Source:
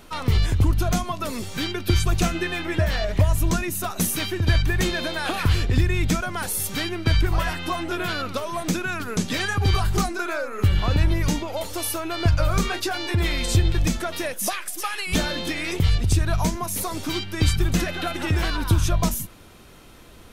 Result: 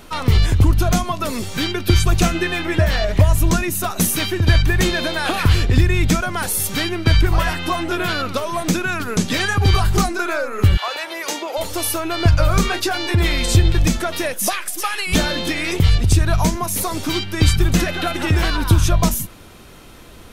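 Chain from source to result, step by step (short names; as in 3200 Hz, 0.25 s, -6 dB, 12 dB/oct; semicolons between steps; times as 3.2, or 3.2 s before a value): 10.76–11.57 HPF 700 Hz -> 310 Hz 24 dB/oct; gain +5.5 dB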